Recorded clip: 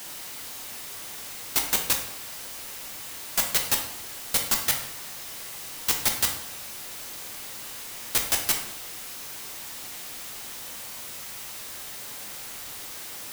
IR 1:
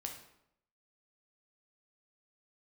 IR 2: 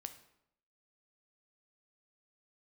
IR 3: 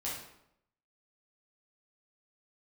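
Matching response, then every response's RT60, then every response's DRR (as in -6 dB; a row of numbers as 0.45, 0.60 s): 1; 0.75, 0.75, 0.75 s; 2.0, 8.0, -7.0 dB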